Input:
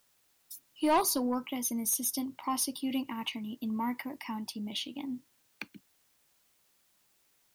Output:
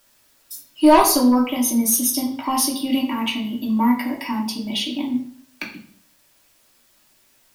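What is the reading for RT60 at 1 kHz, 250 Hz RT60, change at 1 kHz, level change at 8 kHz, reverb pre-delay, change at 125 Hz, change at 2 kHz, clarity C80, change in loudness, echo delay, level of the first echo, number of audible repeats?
0.55 s, 0.65 s, +13.0 dB, +11.5 dB, 3 ms, n/a, +12.5 dB, 11.0 dB, +13.5 dB, none, none, none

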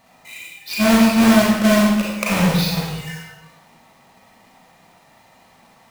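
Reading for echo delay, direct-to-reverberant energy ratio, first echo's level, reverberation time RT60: none, -4.5 dB, none, 1.2 s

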